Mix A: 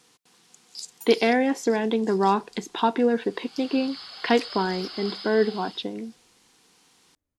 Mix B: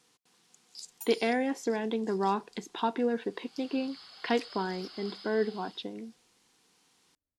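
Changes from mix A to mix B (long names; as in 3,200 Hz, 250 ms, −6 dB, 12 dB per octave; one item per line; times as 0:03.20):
speech −7.5 dB
second sound −10.0 dB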